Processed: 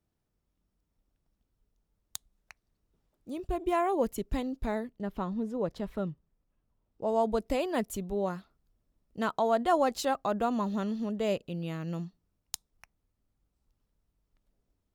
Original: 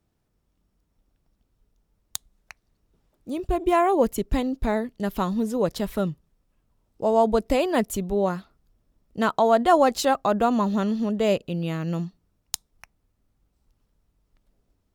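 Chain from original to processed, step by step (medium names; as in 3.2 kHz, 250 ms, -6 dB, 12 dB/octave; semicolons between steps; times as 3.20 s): 4.88–7.07 s: low-pass 1.4 kHz -> 2.8 kHz 6 dB/octave; trim -8 dB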